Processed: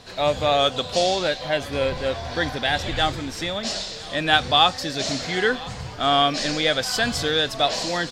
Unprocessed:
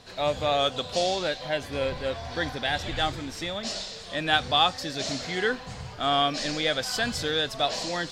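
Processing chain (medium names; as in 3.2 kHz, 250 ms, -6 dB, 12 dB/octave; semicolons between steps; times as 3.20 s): delay 1012 ms -21.5 dB; trim +5 dB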